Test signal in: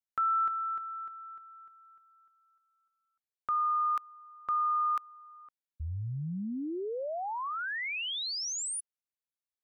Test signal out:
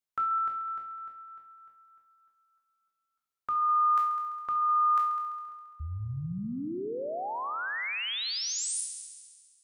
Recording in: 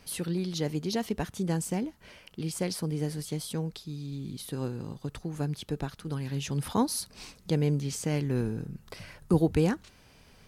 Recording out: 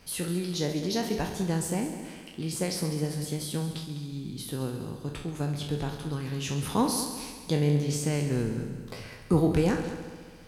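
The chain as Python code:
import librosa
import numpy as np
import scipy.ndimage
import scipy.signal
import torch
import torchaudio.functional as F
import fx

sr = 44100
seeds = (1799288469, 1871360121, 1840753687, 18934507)

y = fx.spec_trails(x, sr, decay_s=0.41)
y = fx.echo_heads(y, sr, ms=68, heads='all three', feedback_pct=55, wet_db=-15)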